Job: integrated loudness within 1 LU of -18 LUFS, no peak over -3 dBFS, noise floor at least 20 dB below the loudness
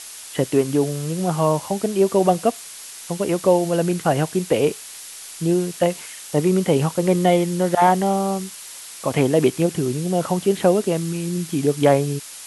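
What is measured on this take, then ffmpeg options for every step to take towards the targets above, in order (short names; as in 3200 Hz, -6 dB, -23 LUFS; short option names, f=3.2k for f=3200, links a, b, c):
noise floor -38 dBFS; noise floor target -41 dBFS; loudness -20.5 LUFS; peak -3.0 dBFS; loudness target -18.0 LUFS
-> -af "afftdn=nr=6:nf=-38"
-af "volume=2.5dB,alimiter=limit=-3dB:level=0:latency=1"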